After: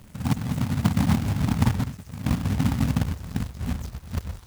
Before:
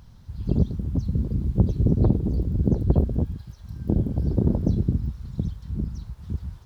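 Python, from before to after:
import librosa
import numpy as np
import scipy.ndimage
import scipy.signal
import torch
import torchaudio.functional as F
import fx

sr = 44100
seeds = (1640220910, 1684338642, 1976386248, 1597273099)

y = fx.speed_glide(x, sr, from_pct=196, to_pct=102)
y = scipy.signal.sosfilt(scipy.signal.cheby1(3, 1.0, [260.0, 810.0], 'bandstop', fs=sr, output='sos'), y)
y = fx.quant_companded(y, sr, bits=4)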